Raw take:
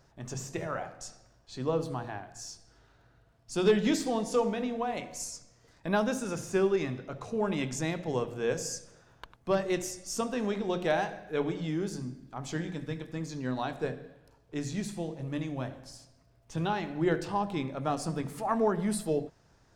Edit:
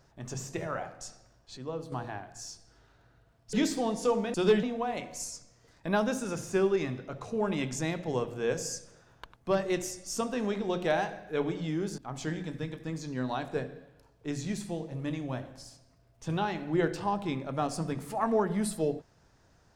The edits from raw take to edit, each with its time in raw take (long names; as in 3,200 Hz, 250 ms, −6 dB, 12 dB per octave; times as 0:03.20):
0:01.57–0:01.92: clip gain −7.5 dB
0:03.53–0:03.82: move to 0:04.63
0:11.98–0:12.26: remove